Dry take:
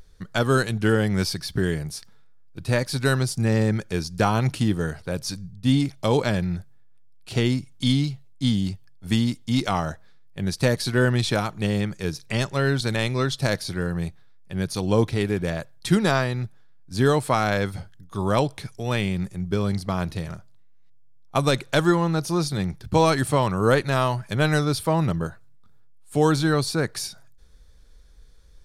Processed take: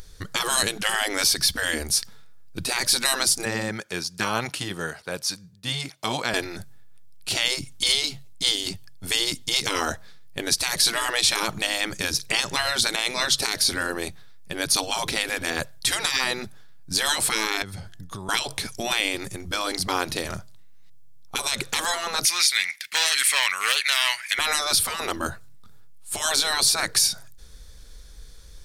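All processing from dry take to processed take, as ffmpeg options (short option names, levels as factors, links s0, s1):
-filter_complex "[0:a]asettb=1/sr,asplit=3[s0][s1][s2];[s0]atrim=end=3.454[s3];[s1]atrim=start=3.45:end=6.34,asetpts=PTS-STARTPTS,afade=t=in:d=0.004:c=qsin,afade=t=out:st=2.886:d=0.004:c=qsin,highpass=f=1100:p=1,highshelf=f=2400:g=-10.5[s4];[s2]atrim=start=6.336[s5];[s3][s4]acrossfade=d=0.004:c1=hsin:c2=qsin[s6];[s6][s5]acrossfade=d=0.004:c1=qsin:c2=hsin,asettb=1/sr,asplit=3[s7][s8][s9];[s7]atrim=end=17.624[s10];[s8]atrim=start=17.62:end=18.29,asetpts=PTS-STARTPTS,afade=t=in:d=0.004:c=qsin,afade=t=out:st=0.666:d=0.004:c=qsin,highshelf=f=9800:g=-5,bandreject=f=345.2:t=h:w=4,bandreject=f=690.4:t=h:w=4,bandreject=f=1035.6:t=h:w=4,bandreject=f=1380.8:t=h:w=4,bandreject=f=1726:t=h:w=4,acompressor=threshold=0.0126:ratio=12:attack=3.2:release=140:knee=1:detection=peak[s11];[s9]atrim=start=18.286[s12];[s10][s11]acrossfade=d=0.004:c1=hsin:c2=qsin[s13];[s13][s12]acrossfade=d=0.004:c1=qsin:c2=hsin,asettb=1/sr,asplit=3[s14][s15][s16];[s14]atrim=end=22.254[s17];[s15]atrim=start=22.25:end=24.39,asetpts=PTS-STARTPTS,afade=t=in:d=0.004:c=qsin,afade=t=out:st=2.136:d=0.004:c=qsin,asoftclip=type=hard:threshold=0.211,highpass=f=2100:t=q:w=7[s18];[s16]atrim=start=24.386[s19];[s17][s18]acrossfade=d=0.004:c1=hsin:c2=qsin[s20];[s20][s19]acrossfade=d=0.004:c1=qsin:c2=hsin,afftfilt=real='re*lt(hypot(re,im),0.158)':imag='im*lt(hypot(re,im),0.158)':win_size=1024:overlap=0.75,highshelf=f=2800:g=9,alimiter=limit=0.188:level=0:latency=1:release=74,volume=2.11"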